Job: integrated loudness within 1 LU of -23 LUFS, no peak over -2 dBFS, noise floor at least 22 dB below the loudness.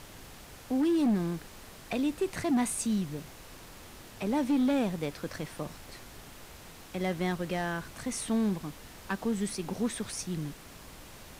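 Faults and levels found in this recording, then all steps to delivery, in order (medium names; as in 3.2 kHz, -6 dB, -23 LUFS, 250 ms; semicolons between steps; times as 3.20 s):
clipped samples 1.3%; clipping level -22.5 dBFS; noise floor -50 dBFS; noise floor target -54 dBFS; loudness -31.5 LUFS; peak level -22.5 dBFS; loudness target -23.0 LUFS
-> clip repair -22.5 dBFS; noise print and reduce 6 dB; trim +8.5 dB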